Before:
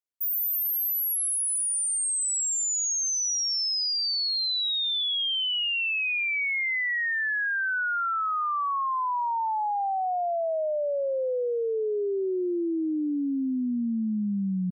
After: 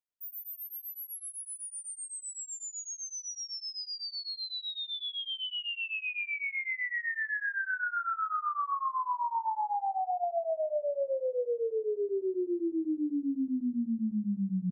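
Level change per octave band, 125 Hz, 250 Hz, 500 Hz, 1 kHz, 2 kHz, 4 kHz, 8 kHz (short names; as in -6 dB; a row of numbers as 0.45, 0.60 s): n/a, -4.0 dB, -4.5 dB, -5.0 dB, -7.0 dB, -10.5 dB, -14.0 dB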